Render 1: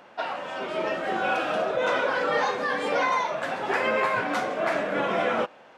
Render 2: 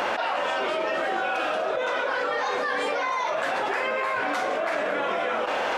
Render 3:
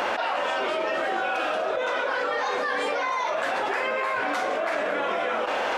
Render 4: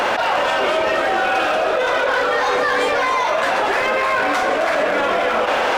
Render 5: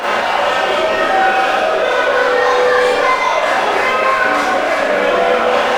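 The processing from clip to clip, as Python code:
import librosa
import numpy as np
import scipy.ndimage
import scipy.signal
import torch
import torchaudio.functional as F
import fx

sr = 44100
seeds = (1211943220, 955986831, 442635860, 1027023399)

y1 = fx.peak_eq(x, sr, hz=160.0, db=-12.0, octaves=1.5)
y1 = fx.env_flatten(y1, sr, amount_pct=100)
y1 = F.gain(torch.from_numpy(y1), -3.5).numpy()
y2 = fx.peak_eq(y1, sr, hz=150.0, db=-8.0, octaves=0.3)
y3 = np.clip(10.0 ** (22.0 / 20.0) * y2, -1.0, 1.0) / 10.0 ** (22.0 / 20.0)
y3 = y3 + 10.0 ** (-8.5 / 20.0) * np.pad(y3, (int(263 * sr / 1000.0), 0))[:len(y3)]
y3 = F.gain(torch.from_numpy(y3), 8.5).numpy()
y4 = fx.rev_schroeder(y3, sr, rt60_s=0.59, comb_ms=30, drr_db=-7.5)
y4 = F.gain(torch.from_numpy(y4), -4.5).numpy()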